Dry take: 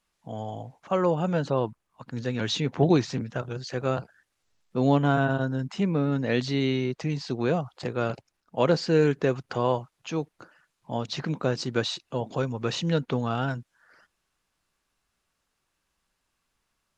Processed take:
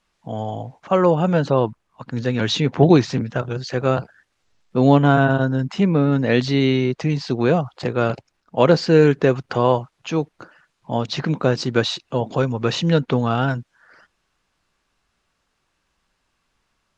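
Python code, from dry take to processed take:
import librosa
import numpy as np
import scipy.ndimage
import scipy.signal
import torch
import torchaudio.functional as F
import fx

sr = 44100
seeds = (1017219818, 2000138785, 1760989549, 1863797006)

y = fx.air_absorb(x, sr, metres=53.0)
y = y * librosa.db_to_amplitude(8.0)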